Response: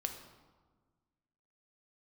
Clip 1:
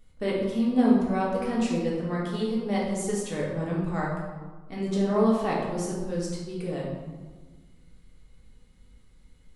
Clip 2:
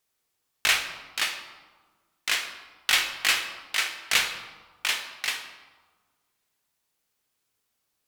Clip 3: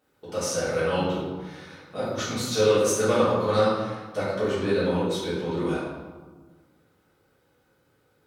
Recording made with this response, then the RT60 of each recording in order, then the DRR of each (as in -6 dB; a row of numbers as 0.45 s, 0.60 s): 2; 1.4 s, 1.5 s, 1.4 s; -5.0 dB, 4.5 dB, -12.0 dB